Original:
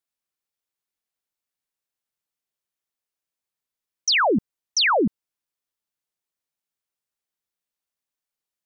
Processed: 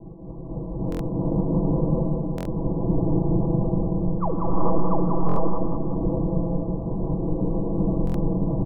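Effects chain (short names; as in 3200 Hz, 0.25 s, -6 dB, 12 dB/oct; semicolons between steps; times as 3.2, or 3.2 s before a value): half-wave gain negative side -7 dB; wind noise 260 Hz -39 dBFS; recorder AGC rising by 6.9 dB/s; steep low-pass 1100 Hz 96 dB/oct; comb 6.1 ms, depth 90%; compressor 8:1, threshold -33 dBFS, peak gain reduction 18 dB; feedback echo 0.187 s, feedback 52%, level -4 dB; non-linear reverb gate 0.49 s rising, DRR -4 dB; stuck buffer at 0.9/2.36/5.27/8.05, samples 1024, times 3; gain +7.5 dB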